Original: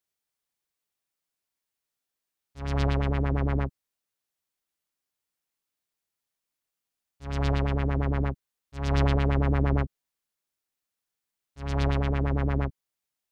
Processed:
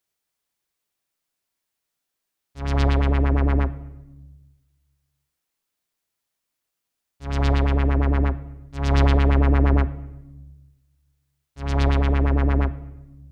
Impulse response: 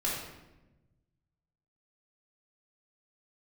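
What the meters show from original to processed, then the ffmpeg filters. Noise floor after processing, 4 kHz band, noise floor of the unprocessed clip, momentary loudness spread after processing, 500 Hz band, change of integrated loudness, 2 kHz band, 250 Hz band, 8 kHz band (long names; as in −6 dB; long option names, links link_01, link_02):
−81 dBFS, +5.0 dB, below −85 dBFS, 16 LU, +4.5 dB, +6.0 dB, +5.5 dB, +5.5 dB, can't be measured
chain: -filter_complex "[0:a]asplit=2[link_01][link_02];[1:a]atrim=start_sample=2205,highshelf=frequency=3500:gain=-9[link_03];[link_02][link_03]afir=irnorm=-1:irlink=0,volume=-18dB[link_04];[link_01][link_04]amix=inputs=2:normalize=0,volume=4.5dB"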